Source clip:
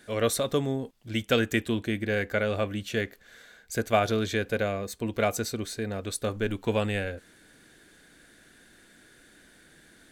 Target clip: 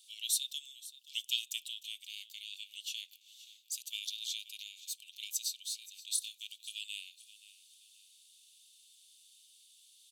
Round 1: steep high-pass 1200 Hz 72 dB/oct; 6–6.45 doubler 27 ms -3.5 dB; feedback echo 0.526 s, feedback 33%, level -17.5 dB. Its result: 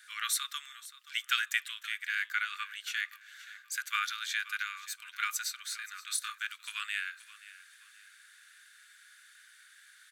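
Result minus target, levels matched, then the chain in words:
2000 Hz band +13.5 dB
steep high-pass 2800 Hz 72 dB/oct; 6–6.45 doubler 27 ms -3.5 dB; feedback echo 0.526 s, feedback 33%, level -17.5 dB

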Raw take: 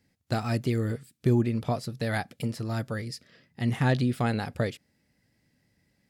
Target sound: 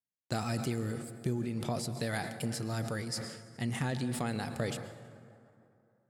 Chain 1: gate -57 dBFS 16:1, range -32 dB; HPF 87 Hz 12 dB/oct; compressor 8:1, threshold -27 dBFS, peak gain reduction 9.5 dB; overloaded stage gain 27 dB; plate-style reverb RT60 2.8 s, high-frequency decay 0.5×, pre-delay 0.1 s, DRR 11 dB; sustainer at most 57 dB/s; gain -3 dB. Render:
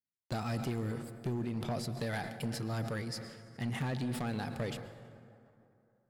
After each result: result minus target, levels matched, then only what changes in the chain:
overloaded stage: distortion +25 dB; 8000 Hz band -5.5 dB
change: overloaded stage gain 17 dB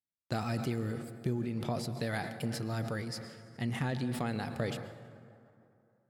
8000 Hz band -6.5 dB
add after compressor: bell 8300 Hz +9.5 dB 1.1 oct

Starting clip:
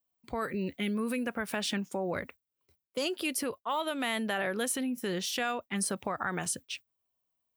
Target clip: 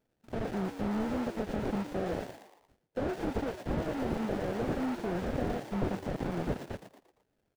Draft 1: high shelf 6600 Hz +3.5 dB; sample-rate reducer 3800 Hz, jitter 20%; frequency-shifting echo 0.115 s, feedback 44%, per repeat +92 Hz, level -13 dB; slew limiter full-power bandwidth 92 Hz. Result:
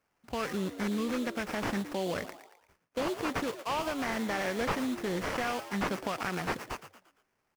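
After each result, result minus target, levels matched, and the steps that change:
sample-rate reducer: distortion -9 dB; slew limiter: distortion -5 dB
change: sample-rate reducer 1100 Hz, jitter 20%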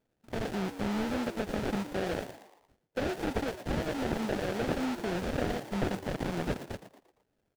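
slew limiter: distortion -7 dB
change: slew limiter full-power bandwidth 26.5 Hz

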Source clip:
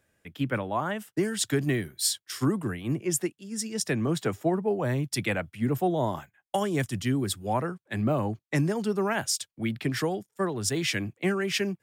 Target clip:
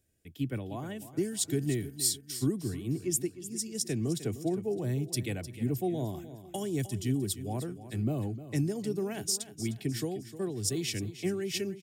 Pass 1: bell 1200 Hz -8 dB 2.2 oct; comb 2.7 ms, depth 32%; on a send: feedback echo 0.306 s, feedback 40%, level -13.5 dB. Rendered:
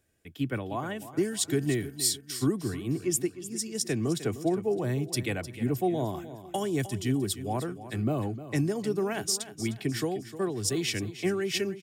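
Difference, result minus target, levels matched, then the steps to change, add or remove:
1000 Hz band +5.5 dB
change: bell 1200 Hz -20 dB 2.2 oct

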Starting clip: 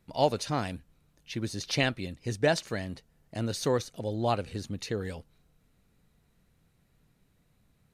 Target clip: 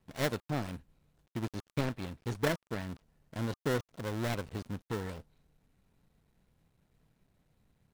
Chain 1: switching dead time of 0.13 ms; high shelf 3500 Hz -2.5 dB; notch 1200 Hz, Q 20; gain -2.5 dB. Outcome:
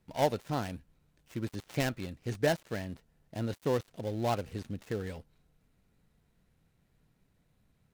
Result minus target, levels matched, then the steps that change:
switching dead time: distortion -8 dB
change: switching dead time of 0.49 ms

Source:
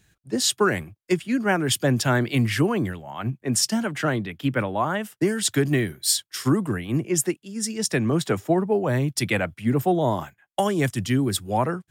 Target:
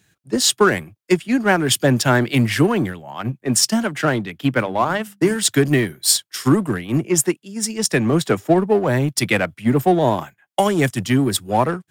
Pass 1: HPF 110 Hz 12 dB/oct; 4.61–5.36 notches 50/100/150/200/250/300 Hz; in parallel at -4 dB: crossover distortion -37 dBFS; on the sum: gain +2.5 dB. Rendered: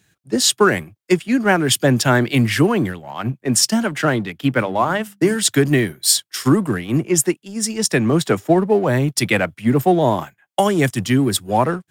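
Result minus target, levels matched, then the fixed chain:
crossover distortion: distortion -8 dB
HPF 110 Hz 12 dB/oct; 4.61–5.36 notches 50/100/150/200/250/300 Hz; in parallel at -4 dB: crossover distortion -28 dBFS; on the sum: gain +2.5 dB

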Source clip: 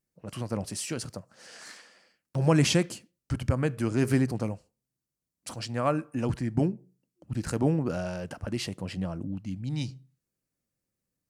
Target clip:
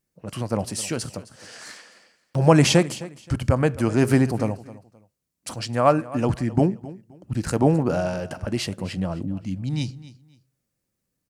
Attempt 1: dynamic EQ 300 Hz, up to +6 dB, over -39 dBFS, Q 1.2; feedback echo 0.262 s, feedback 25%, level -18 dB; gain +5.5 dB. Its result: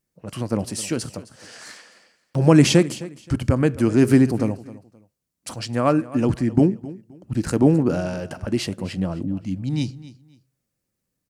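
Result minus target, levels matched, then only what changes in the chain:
1000 Hz band -5.5 dB
change: dynamic EQ 760 Hz, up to +6 dB, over -39 dBFS, Q 1.2

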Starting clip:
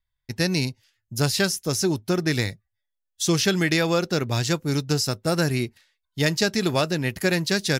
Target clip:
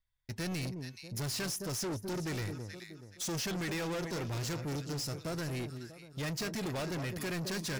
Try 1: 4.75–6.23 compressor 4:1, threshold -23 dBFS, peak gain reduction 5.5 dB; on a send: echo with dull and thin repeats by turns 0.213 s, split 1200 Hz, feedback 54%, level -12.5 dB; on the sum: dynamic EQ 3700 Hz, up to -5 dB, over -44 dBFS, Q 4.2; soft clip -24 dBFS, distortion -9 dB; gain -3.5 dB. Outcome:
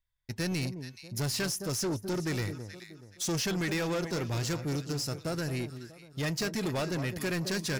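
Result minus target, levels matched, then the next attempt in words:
soft clip: distortion -4 dB
4.75–6.23 compressor 4:1, threshold -23 dBFS, peak gain reduction 5.5 dB; on a send: echo with dull and thin repeats by turns 0.213 s, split 1200 Hz, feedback 54%, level -12.5 dB; on the sum: dynamic EQ 3700 Hz, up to -5 dB, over -44 dBFS, Q 4.2; soft clip -30.5 dBFS, distortion -5 dB; gain -3.5 dB

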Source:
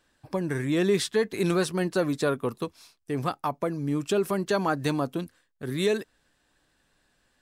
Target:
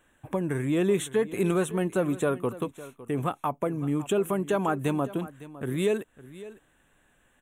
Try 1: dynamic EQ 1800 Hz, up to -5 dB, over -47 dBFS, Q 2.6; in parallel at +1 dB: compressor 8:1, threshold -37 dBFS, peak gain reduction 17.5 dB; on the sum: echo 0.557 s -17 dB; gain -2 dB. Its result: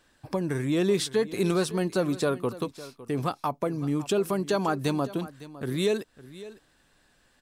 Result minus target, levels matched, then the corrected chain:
4000 Hz band +6.5 dB
dynamic EQ 1800 Hz, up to -5 dB, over -47 dBFS, Q 2.6; Butterworth band-stop 4800 Hz, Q 1.3; in parallel at +1 dB: compressor 8:1, threshold -37 dBFS, peak gain reduction 17.5 dB; on the sum: echo 0.557 s -17 dB; gain -2 dB

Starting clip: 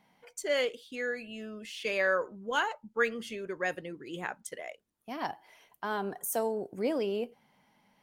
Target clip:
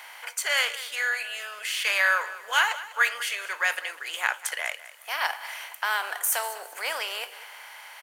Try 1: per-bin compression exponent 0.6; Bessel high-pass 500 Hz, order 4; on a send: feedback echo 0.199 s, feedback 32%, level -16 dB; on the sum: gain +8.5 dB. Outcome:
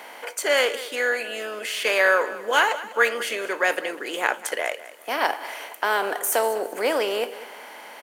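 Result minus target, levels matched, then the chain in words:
500 Hz band +12.5 dB
per-bin compression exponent 0.6; Bessel high-pass 1300 Hz, order 4; on a send: feedback echo 0.199 s, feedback 32%, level -16 dB; on the sum: gain +8.5 dB

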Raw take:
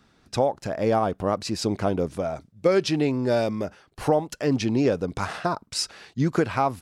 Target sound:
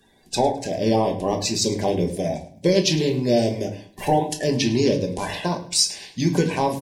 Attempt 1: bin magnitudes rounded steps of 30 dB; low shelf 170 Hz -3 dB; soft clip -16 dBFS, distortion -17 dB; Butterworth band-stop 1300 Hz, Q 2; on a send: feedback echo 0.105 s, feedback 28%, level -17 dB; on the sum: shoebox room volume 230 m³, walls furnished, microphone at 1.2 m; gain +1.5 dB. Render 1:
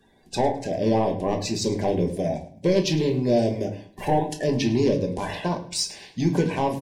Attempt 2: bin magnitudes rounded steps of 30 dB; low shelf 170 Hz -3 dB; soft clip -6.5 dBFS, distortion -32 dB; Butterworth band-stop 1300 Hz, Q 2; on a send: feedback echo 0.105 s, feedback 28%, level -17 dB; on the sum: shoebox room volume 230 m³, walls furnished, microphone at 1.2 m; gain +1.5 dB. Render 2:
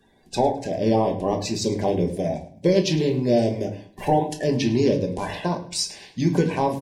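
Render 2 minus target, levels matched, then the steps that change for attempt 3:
4000 Hz band -5.0 dB
add after Butterworth band-stop: high shelf 2800 Hz +8.5 dB

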